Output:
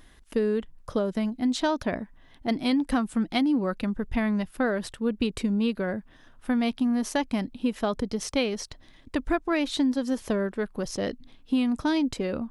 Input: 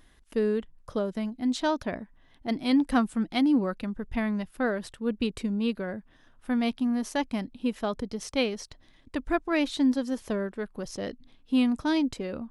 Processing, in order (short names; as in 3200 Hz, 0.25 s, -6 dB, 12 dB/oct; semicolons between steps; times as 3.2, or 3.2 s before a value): compressor, threshold -26 dBFS, peak gain reduction 8 dB; gain +5 dB